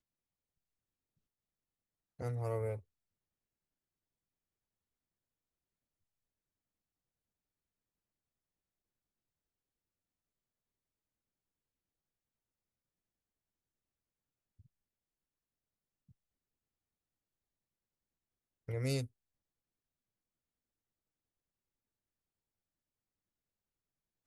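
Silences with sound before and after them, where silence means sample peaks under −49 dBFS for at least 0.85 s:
0:02.79–0:18.68

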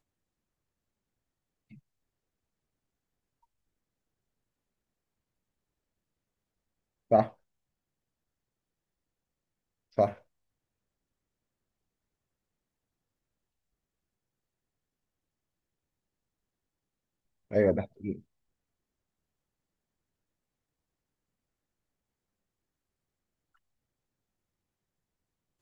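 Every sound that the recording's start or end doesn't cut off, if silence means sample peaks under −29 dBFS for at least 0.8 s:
0:07.12–0:07.23
0:09.98–0:10.09
0:17.53–0:18.11

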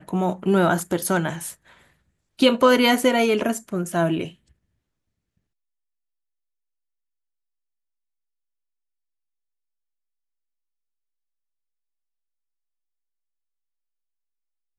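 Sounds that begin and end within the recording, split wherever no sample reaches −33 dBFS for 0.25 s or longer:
0:02.39–0:04.28

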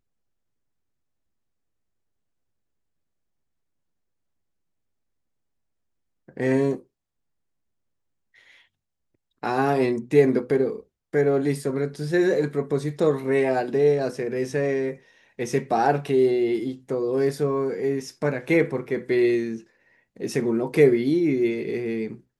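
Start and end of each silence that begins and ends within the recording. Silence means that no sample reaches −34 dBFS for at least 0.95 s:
0:06.77–0:09.43

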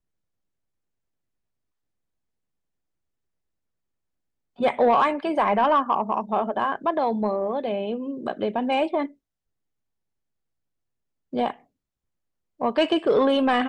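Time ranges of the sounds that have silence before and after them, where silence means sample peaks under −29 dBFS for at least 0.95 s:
0:04.60–0:09.06
0:11.33–0:11.51

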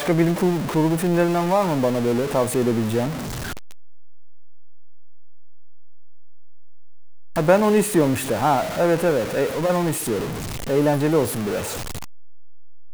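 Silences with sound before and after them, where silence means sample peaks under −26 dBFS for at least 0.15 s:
0:03.11–0:07.37
0:10.32–0:10.69

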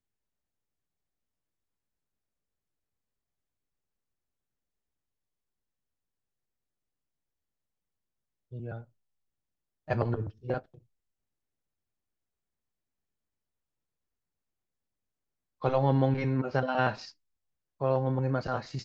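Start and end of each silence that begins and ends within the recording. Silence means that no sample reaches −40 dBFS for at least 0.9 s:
0:08.81–0:09.88
0:10.59–0:15.62

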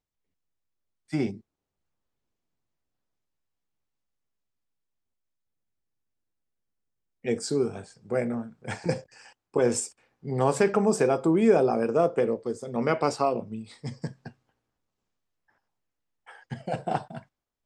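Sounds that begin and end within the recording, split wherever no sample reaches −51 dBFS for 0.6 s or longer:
0:01.09–0:01.40
0:07.24–0:14.32

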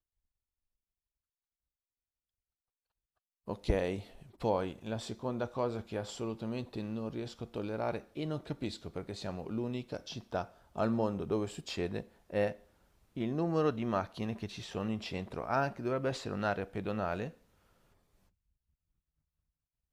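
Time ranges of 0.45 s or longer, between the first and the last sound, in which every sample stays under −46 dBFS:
0:12.55–0:13.17

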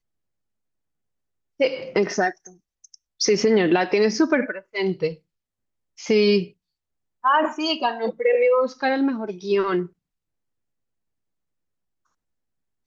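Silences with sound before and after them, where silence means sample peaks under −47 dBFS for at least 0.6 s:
0:05.18–0:05.98
0:06.51–0:07.24

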